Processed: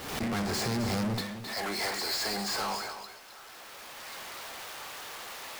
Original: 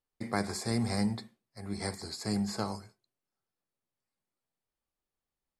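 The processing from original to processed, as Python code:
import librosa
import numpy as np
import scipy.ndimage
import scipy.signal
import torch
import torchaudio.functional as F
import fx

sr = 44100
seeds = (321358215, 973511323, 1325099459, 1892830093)

y = scipy.ndimage.median_filter(x, 5, mode='constant')
y = fx.recorder_agc(y, sr, target_db=-21.0, rise_db_per_s=19.0, max_gain_db=30)
y = fx.highpass(y, sr, hz=fx.steps((0.0, 84.0), (1.21, 710.0)), slope=12)
y = fx.power_curve(y, sr, exponent=0.5)
y = 10.0 ** (-27.5 / 20.0) * np.tanh(y / 10.0 ** (-27.5 / 20.0))
y = y + 10.0 ** (-10.5 / 20.0) * np.pad(y, (int(264 * sr / 1000.0), 0))[:len(y)]
y = fx.pre_swell(y, sr, db_per_s=56.0)
y = y * librosa.db_to_amplitude(-1.0)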